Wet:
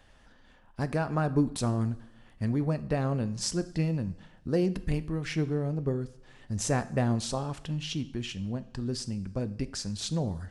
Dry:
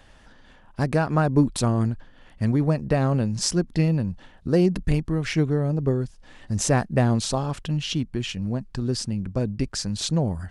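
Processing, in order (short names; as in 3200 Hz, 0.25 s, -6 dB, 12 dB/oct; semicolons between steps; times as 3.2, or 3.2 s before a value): two-slope reverb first 0.55 s, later 1.7 s, from -16 dB, DRR 11.5 dB; gain -7 dB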